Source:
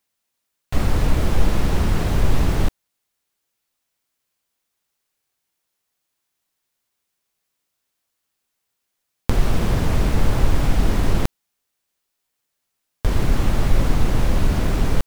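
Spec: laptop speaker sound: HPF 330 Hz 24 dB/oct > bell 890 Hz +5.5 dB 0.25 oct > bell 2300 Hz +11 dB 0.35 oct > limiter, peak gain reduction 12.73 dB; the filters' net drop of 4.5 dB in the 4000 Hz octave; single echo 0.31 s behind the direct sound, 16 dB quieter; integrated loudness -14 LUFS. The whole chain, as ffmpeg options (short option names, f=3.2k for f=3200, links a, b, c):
-af "highpass=f=330:w=0.5412,highpass=f=330:w=1.3066,equalizer=f=890:t=o:w=0.25:g=5.5,equalizer=f=2.3k:t=o:w=0.35:g=11,equalizer=f=4k:t=o:g=-8,aecho=1:1:310:0.158,volume=16dB,alimiter=limit=-4dB:level=0:latency=1"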